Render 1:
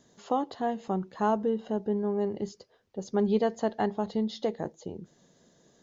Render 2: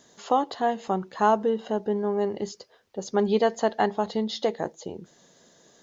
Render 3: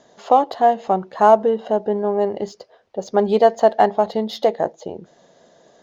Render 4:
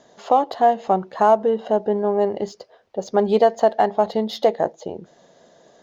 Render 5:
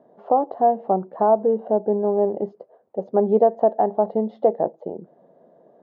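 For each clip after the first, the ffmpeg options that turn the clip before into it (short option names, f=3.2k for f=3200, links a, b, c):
-af "lowshelf=f=360:g=-11,volume=8.5dB"
-af "equalizer=f=650:t=o:w=0.88:g=9.5,adynamicsmooth=sensitivity=6:basefreq=5.6k,volume=2.5dB"
-af "alimiter=limit=-5.5dB:level=0:latency=1:release=236"
-af "asuperpass=centerf=340:order=4:qfactor=0.52"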